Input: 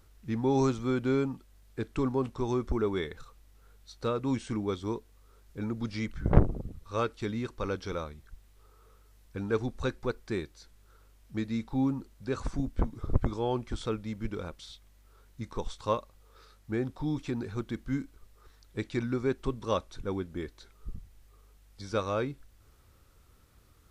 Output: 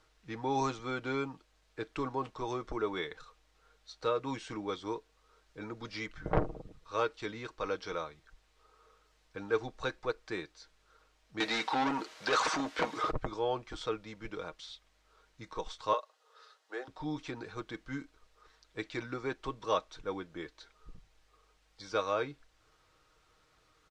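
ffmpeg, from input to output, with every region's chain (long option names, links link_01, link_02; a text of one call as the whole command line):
ffmpeg -i in.wav -filter_complex "[0:a]asettb=1/sr,asplit=3[link_01][link_02][link_03];[link_01]atrim=end=11.404[link_04];[link_02]atrim=start=11.4:end=13.11,asetpts=PTS-STARTPTS,afade=type=in:duration=0.004:curve=qsin,afade=type=out:start_time=1.706:duration=0.004:curve=qsin,highpass=frequency=230:poles=1,asplit=2[link_05][link_06];[link_06]highpass=frequency=720:poles=1,volume=28dB,asoftclip=type=tanh:threshold=-18.5dB[link_07];[link_05][link_07]amix=inputs=2:normalize=0,lowpass=frequency=5800:poles=1,volume=-6dB[link_08];[link_03]atrim=start=13.106[link_09];[link_04][link_08]acrossfade=duration=0.004:curve1=hsin:curve2=qsin[link_10];[link_10][link_09]acrossfade=duration=0.004:curve1=qsin:curve2=hsin,asettb=1/sr,asplit=3[link_11][link_12][link_13];[link_11]atrim=end=15.934[link_14];[link_12]atrim=start=15.93:end=16.88,asetpts=PTS-STARTPTS,afade=type=in:duration=0.004:curve=qsin,afade=type=out:start_time=0.946:duration=0.004:curve=qsin,highpass=frequency=430:width=0.5412,highpass=frequency=430:width=1.3066,bandreject=frequency=2300:width=7.8[link_15];[link_13]atrim=start=16.876[link_16];[link_14][link_15]acrossfade=duration=0.004:curve1=hsin:curve2=qsin[link_17];[link_17][link_16]acrossfade=duration=0.004:curve1=qsin:curve2=hsin,acrossover=split=410 7100:gain=0.224 1 0.0891[link_18][link_19][link_20];[link_18][link_19][link_20]amix=inputs=3:normalize=0,aecho=1:1:6.4:0.46" out.wav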